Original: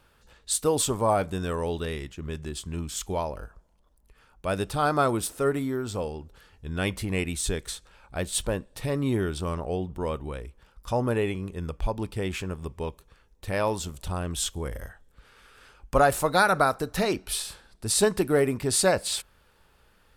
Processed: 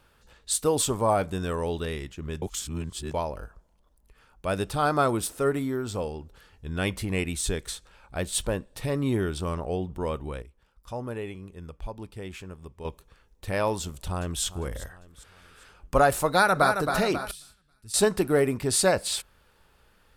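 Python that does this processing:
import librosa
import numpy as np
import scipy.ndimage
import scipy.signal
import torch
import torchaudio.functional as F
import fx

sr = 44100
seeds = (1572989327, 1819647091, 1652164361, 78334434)

y = fx.echo_throw(x, sr, start_s=13.81, length_s=0.62, ms=400, feedback_pct=45, wet_db=-15.5)
y = fx.echo_throw(y, sr, start_s=16.28, length_s=0.5, ms=270, feedback_pct=50, wet_db=-6.5)
y = fx.tone_stack(y, sr, knobs='6-0-2', at=(17.31, 17.94))
y = fx.edit(y, sr, fx.reverse_span(start_s=2.42, length_s=0.72),
    fx.clip_gain(start_s=10.42, length_s=2.43, db=-8.5), tone=tone)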